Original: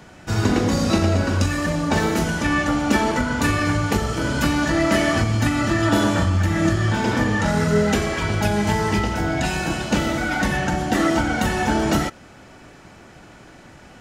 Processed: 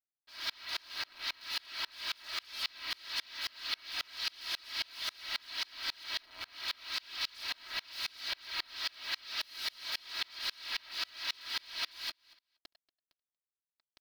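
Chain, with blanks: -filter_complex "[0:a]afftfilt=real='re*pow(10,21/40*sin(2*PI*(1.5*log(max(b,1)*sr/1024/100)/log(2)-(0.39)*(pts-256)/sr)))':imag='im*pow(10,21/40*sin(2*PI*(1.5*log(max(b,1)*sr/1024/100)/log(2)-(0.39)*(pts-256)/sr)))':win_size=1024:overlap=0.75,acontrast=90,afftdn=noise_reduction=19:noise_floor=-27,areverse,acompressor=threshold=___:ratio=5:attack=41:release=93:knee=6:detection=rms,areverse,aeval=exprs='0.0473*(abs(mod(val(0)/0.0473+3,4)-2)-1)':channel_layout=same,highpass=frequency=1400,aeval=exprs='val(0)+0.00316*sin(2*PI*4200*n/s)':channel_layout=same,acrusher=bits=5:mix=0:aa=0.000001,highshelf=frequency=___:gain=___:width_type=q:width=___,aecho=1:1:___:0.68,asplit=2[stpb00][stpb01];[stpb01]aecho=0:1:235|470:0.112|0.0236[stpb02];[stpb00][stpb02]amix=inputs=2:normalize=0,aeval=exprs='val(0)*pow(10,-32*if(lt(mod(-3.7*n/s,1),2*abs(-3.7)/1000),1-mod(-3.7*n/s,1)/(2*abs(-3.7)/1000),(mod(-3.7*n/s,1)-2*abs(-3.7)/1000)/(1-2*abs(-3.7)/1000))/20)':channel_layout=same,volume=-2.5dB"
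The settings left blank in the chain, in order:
-19dB, 5800, -9, 3, 3.1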